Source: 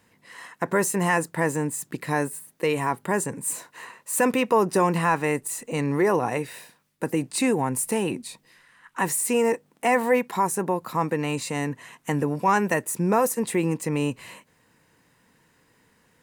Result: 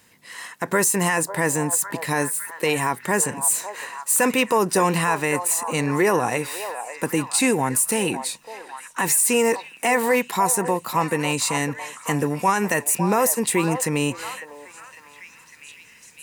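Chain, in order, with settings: high shelf 2200 Hz +10 dB; limiter -11 dBFS, peak gain reduction 6.5 dB; on a send: delay with a stepping band-pass 0.553 s, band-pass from 750 Hz, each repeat 0.7 oct, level -7 dB; on the sum: gain +1.5 dB

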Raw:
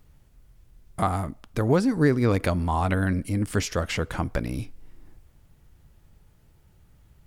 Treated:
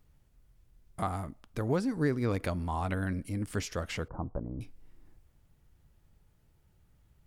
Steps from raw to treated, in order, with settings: 4.08–4.61 steep low-pass 1100 Hz 36 dB/oct; gain -8.5 dB

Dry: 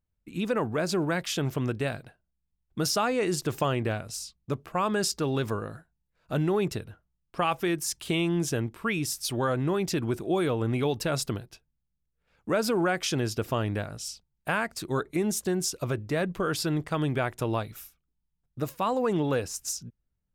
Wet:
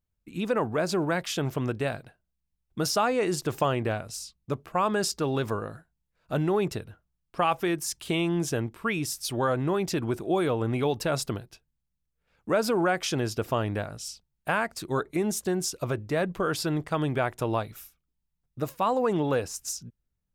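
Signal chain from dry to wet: dynamic EQ 780 Hz, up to +4 dB, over -38 dBFS, Q 0.78; gain -1 dB

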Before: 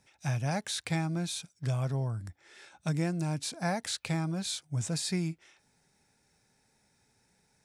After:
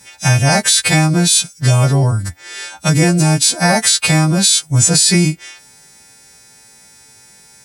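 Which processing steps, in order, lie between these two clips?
frequency quantiser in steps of 2 st; maximiser +20.5 dB; gain -1 dB

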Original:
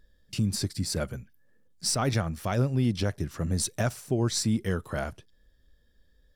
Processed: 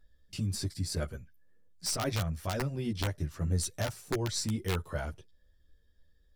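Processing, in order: wrapped overs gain 16.5 dB; chorus voices 6, 0.45 Hz, delay 12 ms, depth 1.7 ms; gain -2.5 dB

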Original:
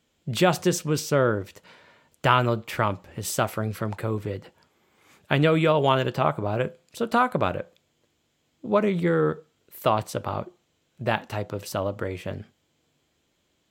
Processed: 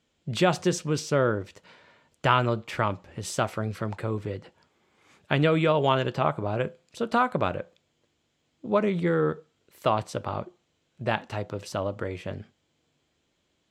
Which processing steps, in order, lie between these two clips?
LPF 7900 Hz 12 dB/oct; gain -2 dB

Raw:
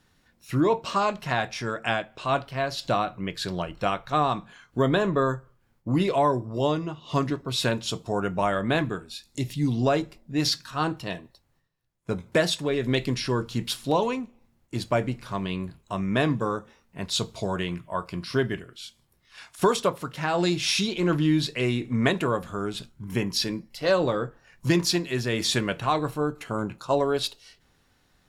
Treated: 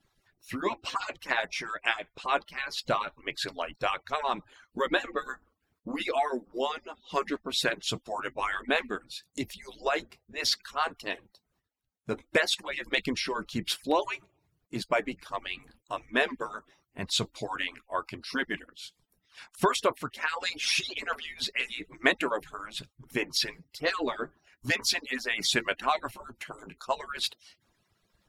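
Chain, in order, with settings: median-filter separation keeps percussive; dynamic EQ 2100 Hz, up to +7 dB, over -46 dBFS, Q 1.3; gain -2.5 dB

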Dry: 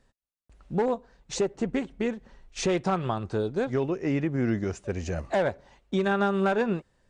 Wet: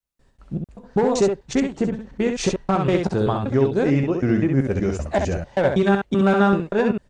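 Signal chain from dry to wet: slices in reverse order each 0.192 s, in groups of 2; low shelf 390 Hz +4 dB; early reflections 15 ms -11 dB, 66 ms -5 dB; gain +4 dB

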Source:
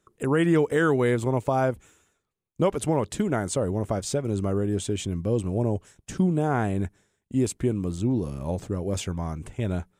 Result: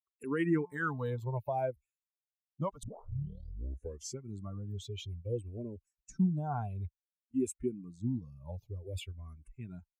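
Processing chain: per-bin expansion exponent 2; 0.58–1.2 de-hum 176.6 Hz, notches 6; 2.83 tape start 1.42 s; endless phaser -0.55 Hz; gain -4 dB

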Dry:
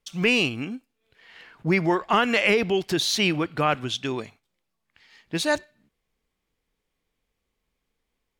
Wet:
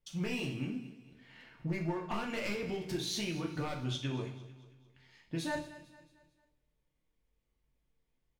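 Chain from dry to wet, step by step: one-sided fold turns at -15.5 dBFS; low shelf 300 Hz +12 dB; notches 60/120/180/240/300 Hz; compressor, threshold -23 dBFS, peak gain reduction 11.5 dB; resonator 130 Hz, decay 1.2 s, harmonics odd, mix 70%; feedback echo 0.224 s, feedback 44%, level -17 dB; two-slope reverb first 0.41 s, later 1.8 s, from -27 dB, DRR -1 dB; gain -2.5 dB

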